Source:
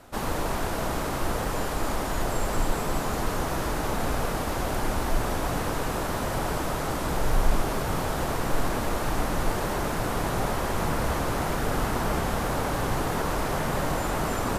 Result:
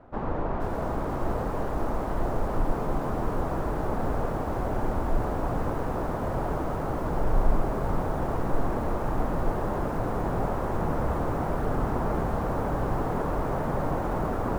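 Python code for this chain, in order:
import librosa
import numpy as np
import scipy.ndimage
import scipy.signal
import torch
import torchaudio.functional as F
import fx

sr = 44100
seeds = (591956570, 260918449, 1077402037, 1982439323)

y = scipy.signal.sosfilt(scipy.signal.butter(2, 1100.0, 'lowpass', fs=sr, output='sos'), x)
y = fx.echo_crushed(y, sr, ms=477, feedback_pct=55, bits=7, wet_db=-11)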